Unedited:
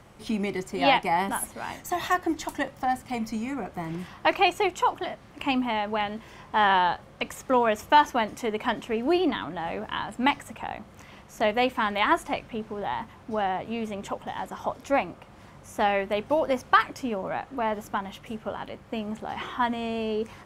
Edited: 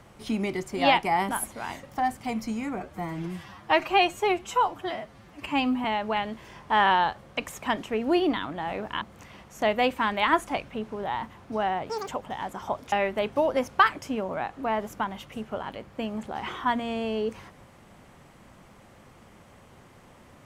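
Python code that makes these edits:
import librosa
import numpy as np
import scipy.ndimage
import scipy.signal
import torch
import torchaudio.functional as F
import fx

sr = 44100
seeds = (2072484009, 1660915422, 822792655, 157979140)

y = fx.edit(x, sr, fx.cut(start_s=1.83, length_s=0.85),
    fx.stretch_span(start_s=3.65, length_s=2.03, factor=1.5),
    fx.cut(start_s=7.46, length_s=1.15),
    fx.cut(start_s=10.0, length_s=0.8),
    fx.speed_span(start_s=13.68, length_s=0.37, speed=1.98),
    fx.cut(start_s=14.89, length_s=0.97), tone=tone)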